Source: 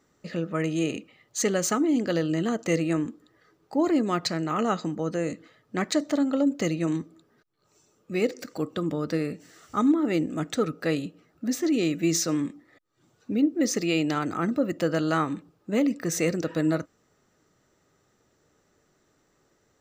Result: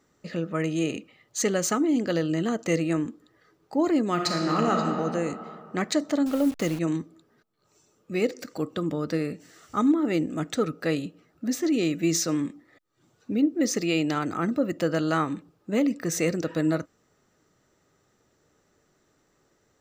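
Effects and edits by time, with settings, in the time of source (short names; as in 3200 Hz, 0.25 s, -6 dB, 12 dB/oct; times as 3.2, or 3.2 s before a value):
4.12–4.79 reverb throw, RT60 2.6 s, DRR 0.5 dB
6.26–6.79 level-crossing sampler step -35.5 dBFS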